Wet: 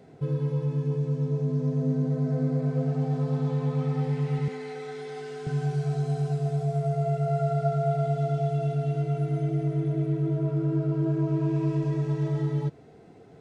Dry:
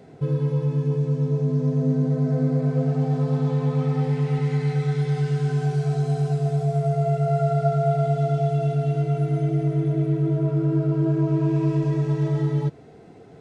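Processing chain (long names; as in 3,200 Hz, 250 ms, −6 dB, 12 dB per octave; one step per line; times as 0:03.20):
0:04.48–0:05.47: elliptic high-pass filter 190 Hz, stop band 40 dB
level −4.5 dB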